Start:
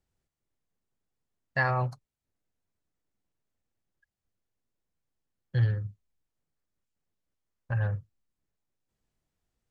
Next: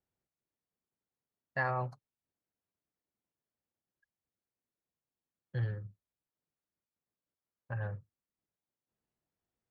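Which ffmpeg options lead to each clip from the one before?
-af "highpass=f=190:p=1,highshelf=f=2900:g=-12,volume=0.668"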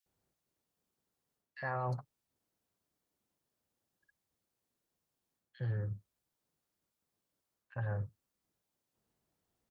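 -filter_complex "[0:a]areverse,acompressor=threshold=0.00794:ratio=4,areverse,acrossover=split=2100[s0][s1];[s0]adelay=60[s2];[s2][s1]amix=inputs=2:normalize=0,volume=2.37"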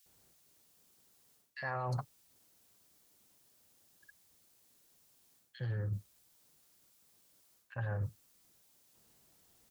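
-af "highshelf=f=2700:g=10.5,areverse,acompressor=threshold=0.00631:ratio=8,areverse,volume=3.16"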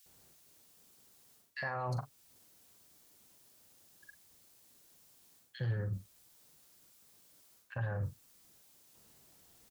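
-filter_complex "[0:a]alimiter=level_in=2.37:limit=0.0631:level=0:latency=1:release=300,volume=0.422,asplit=2[s0][s1];[s1]adelay=43,volume=0.266[s2];[s0][s2]amix=inputs=2:normalize=0,volume=1.58"

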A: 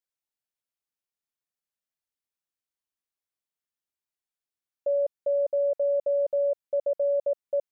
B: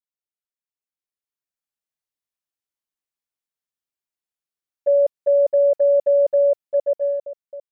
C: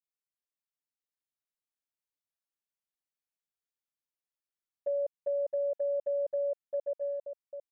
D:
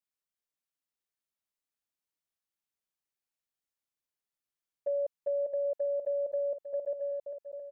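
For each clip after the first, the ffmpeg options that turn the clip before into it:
-af "dynaudnorm=f=330:g=7:m=2.82,agate=range=0.316:threshold=0.112:ratio=16:detection=peak"
-af "acompressor=threshold=0.0398:ratio=2,volume=0.422"
-af "aecho=1:1:585:0.282"

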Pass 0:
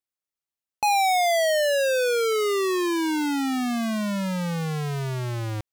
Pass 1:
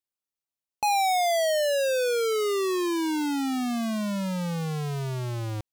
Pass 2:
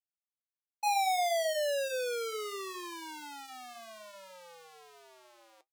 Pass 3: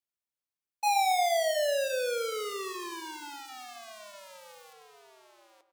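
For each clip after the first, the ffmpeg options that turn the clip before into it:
-af "equalizer=f=1800:t=o:w=0.85:g=-4.5,volume=0.794"
-af "agate=range=0.0224:threshold=0.0708:ratio=3:detection=peak,flanger=delay=5.1:depth=5.9:regen=-64:speed=0.68:shape=triangular,highpass=f=480:w=0.5412,highpass=f=480:w=1.3066"
-filter_complex "[0:a]asplit=2[s0][s1];[s1]acrusher=bits=6:mix=0:aa=0.000001,volume=0.398[s2];[s0][s2]amix=inputs=2:normalize=0,asplit=2[s3][s4];[s4]adelay=118,lowpass=f=1700:p=1,volume=0.316,asplit=2[s5][s6];[s6]adelay=118,lowpass=f=1700:p=1,volume=0.48,asplit=2[s7][s8];[s8]adelay=118,lowpass=f=1700:p=1,volume=0.48,asplit=2[s9][s10];[s10]adelay=118,lowpass=f=1700:p=1,volume=0.48,asplit=2[s11][s12];[s12]adelay=118,lowpass=f=1700:p=1,volume=0.48[s13];[s3][s5][s7][s9][s11][s13]amix=inputs=6:normalize=0"

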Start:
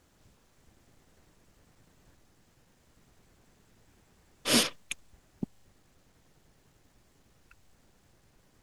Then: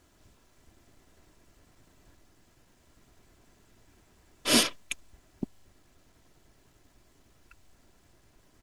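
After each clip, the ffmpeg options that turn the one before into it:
-af "aecho=1:1:3:0.32,volume=1.19"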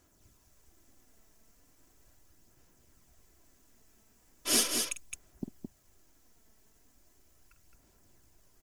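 -filter_complex "[0:a]aphaser=in_gain=1:out_gain=1:delay=4.6:decay=0.39:speed=0.38:type=sinusoidal,aexciter=amount=3.1:drive=2.9:freq=5400,asplit=2[s0][s1];[s1]aecho=0:1:48|216:0.282|0.562[s2];[s0][s2]amix=inputs=2:normalize=0,volume=0.376"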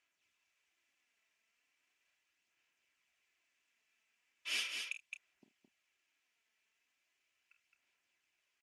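-filter_complex "[0:a]bandpass=f=2500:t=q:w=3.7:csg=0,asplit=2[s0][s1];[s1]adelay=30,volume=0.266[s2];[s0][s2]amix=inputs=2:normalize=0,volume=1.19"

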